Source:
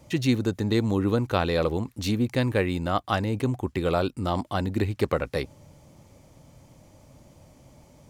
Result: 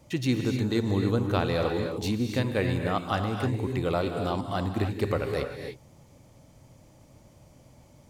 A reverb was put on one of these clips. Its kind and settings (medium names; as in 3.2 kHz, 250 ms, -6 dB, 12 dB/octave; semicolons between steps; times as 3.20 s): gated-style reverb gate 330 ms rising, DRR 4 dB; trim -3.5 dB